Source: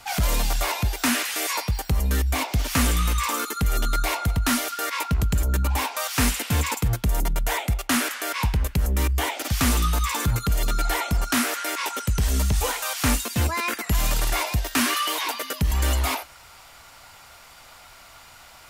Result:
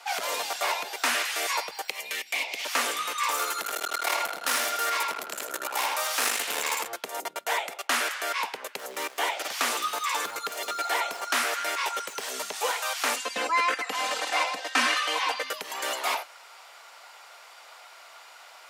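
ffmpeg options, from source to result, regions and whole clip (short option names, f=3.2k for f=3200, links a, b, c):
-filter_complex "[0:a]asettb=1/sr,asplit=3[a][b][c];[a]atrim=end=1.884[d];[b]atrim=start=1.88:end=2.65,asetpts=PTS-STARTPTS,afade=t=in:d=0.004:c=qsin,afade=t=out:st=0.766:d=0.004:c=qsin,highshelf=f=1.8k:t=q:w=3:g=7.5,acrossover=split=650|2500[e][f][g];[e]acompressor=threshold=-31dB:ratio=4[h];[f]acompressor=threshold=-32dB:ratio=4[i];[g]acompressor=threshold=-32dB:ratio=4[j];[h][i][j]amix=inputs=3:normalize=0[k];[c]atrim=start=2.646[l];[d][k]acrossfade=d=0.004:c1=hsin:c2=qsin[m];[m][l]acrossfade=d=0.004:c1=qsin:c2=hsin,asettb=1/sr,asplit=3[n][o][p];[n]atrim=end=3.314[q];[o]atrim=start=3.31:end=6.87,asetpts=PTS-STARTPTS,afade=t=in:d=0.004:c=qsin,afade=t=out:st=3.556:d=0.004:c=qsin,equalizer=f=13k:t=o:w=1.7:g=7.5,asplit=2[r][s];[s]adelay=80,lowpass=f=4.8k:p=1,volume=-3dB,asplit=2[t][u];[u]adelay=80,lowpass=f=4.8k:p=1,volume=0.36,asplit=2[v][w];[w]adelay=80,lowpass=f=4.8k:p=1,volume=0.36,asplit=2[x][y];[y]adelay=80,lowpass=f=4.8k:p=1,volume=0.36,asplit=2[z][aa];[aa]adelay=80,lowpass=f=4.8k:p=1,volume=0.36[ab];[r][t][v][x][z][ab]amix=inputs=6:normalize=0,atrim=end_sample=156996,aeval=exprs='clip(val(0),-1,0.0473)':c=same[ac];[p]atrim=start=6.866[ad];[q][ac]acrossfade=d=0.004:c1=hsin:c2=qsin[ae];[ae][ad]acrossfade=d=0.004:c1=qsin:c2=hsin,asettb=1/sr,asplit=3[af][ag][ah];[af]atrim=end=8.794[ai];[ag]atrim=start=8.79:end=12.29,asetpts=PTS-STARTPTS,afade=t=in:d=0.004:c=qsin,afade=t=out:st=3.496:d=0.004:c=qsin,acrusher=bits=6:mode=log:mix=0:aa=0.000001,aecho=1:1:261:0.0794,atrim=end_sample=154350[aj];[ah]atrim=start=12.286[ak];[ai][aj]acrossfade=d=0.004:c1=hsin:c2=qsin[al];[al][ak]acrossfade=d=0.004:c1=qsin:c2=hsin,asettb=1/sr,asplit=3[am][an][ao];[am]atrim=end=13.164[ap];[an]atrim=start=13.16:end=15.5,asetpts=PTS-STARTPTS,afade=t=in:d=0.004:c=qsin,afade=t=out:st=2.336:d=0.004:c=qsin,lowpass=8.7k,bass=f=250:g=5,treble=f=4k:g=-3,aecho=1:1:3.9:0.85,atrim=end_sample=103194[aq];[ao]atrim=start=15.496[ar];[ap][aq]acrossfade=d=0.004:c1=hsin:c2=qsin[as];[as][ar]acrossfade=d=0.004:c1=qsin:c2=hsin,highpass=f=440:w=0.5412,highpass=f=440:w=1.3066,highshelf=f=8.8k:g=-10.5"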